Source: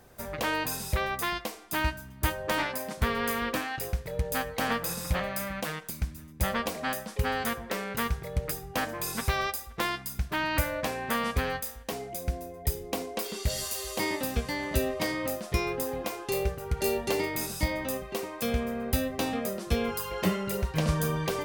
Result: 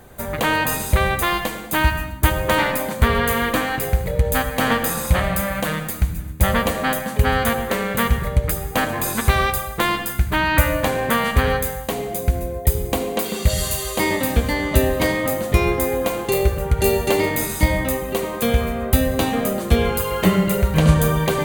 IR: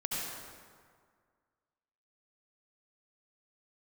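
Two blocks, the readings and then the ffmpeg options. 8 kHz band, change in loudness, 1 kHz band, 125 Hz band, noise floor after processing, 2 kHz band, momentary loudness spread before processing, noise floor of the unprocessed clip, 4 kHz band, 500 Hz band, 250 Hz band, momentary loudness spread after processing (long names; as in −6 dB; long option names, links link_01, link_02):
+9.0 dB, +11.0 dB, +10.5 dB, +13.0 dB, −30 dBFS, +10.5 dB, 5 LU, −46 dBFS, +8.5 dB, +11.0 dB, +11.0 dB, 5 LU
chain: -filter_complex "[0:a]equalizer=frequency=5300:width_type=o:width=0.26:gain=-13,bandreject=frequency=2600:width=29,asplit=2[link_01][link_02];[1:a]atrim=start_sample=2205,afade=type=out:start_time=0.35:duration=0.01,atrim=end_sample=15876,lowshelf=frequency=230:gain=9[link_03];[link_02][link_03]afir=irnorm=-1:irlink=0,volume=-10.5dB[link_04];[link_01][link_04]amix=inputs=2:normalize=0,volume=8dB"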